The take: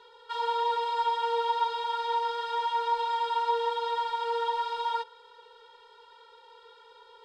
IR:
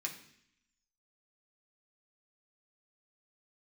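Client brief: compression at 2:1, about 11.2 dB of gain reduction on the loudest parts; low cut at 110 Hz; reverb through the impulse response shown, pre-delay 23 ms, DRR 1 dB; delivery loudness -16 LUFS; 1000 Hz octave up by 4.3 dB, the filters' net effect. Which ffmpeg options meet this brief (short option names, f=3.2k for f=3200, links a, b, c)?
-filter_complex "[0:a]highpass=110,equalizer=f=1k:t=o:g=4.5,acompressor=threshold=-41dB:ratio=2,asplit=2[a][b];[1:a]atrim=start_sample=2205,adelay=23[c];[b][c]afir=irnorm=-1:irlink=0,volume=-1.5dB[d];[a][d]amix=inputs=2:normalize=0,volume=17.5dB"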